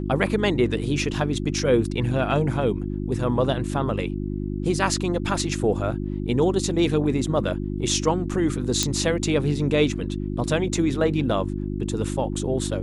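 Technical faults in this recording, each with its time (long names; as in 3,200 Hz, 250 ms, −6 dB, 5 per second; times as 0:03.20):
mains hum 50 Hz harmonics 7 −28 dBFS
0:08.83: click −6 dBFS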